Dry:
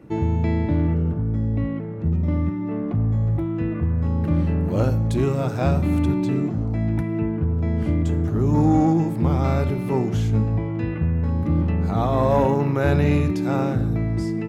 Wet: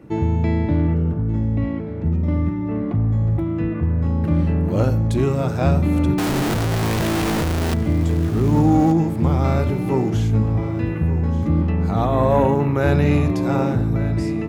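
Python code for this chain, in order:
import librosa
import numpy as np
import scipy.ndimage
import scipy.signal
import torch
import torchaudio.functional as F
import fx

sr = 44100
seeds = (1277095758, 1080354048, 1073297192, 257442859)

p1 = fx.clip_1bit(x, sr, at=(6.18, 7.74))
p2 = fx.peak_eq(p1, sr, hz=5200.0, db=-11.5, octaves=0.4, at=(12.05, 12.77))
p3 = p2 + fx.echo_feedback(p2, sr, ms=1181, feedback_pct=29, wet_db=-14.5, dry=0)
y = p3 * librosa.db_to_amplitude(2.0)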